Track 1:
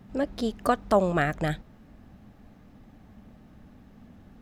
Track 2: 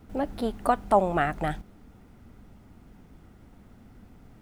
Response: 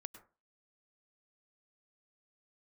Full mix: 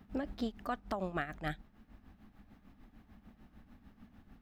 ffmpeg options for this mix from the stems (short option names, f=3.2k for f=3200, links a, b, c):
-filter_complex "[0:a]equalizer=f=125:t=o:w=1:g=-9,equalizer=f=500:t=o:w=1:g=-10,equalizer=f=8k:t=o:w=1:g=-10,volume=-1.5dB[a];[1:a]volume=-14dB[b];[a][b]amix=inputs=2:normalize=0,tremolo=f=6.7:d=0.67,alimiter=level_in=1dB:limit=-24dB:level=0:latency=1:release=458,volume=-1dB"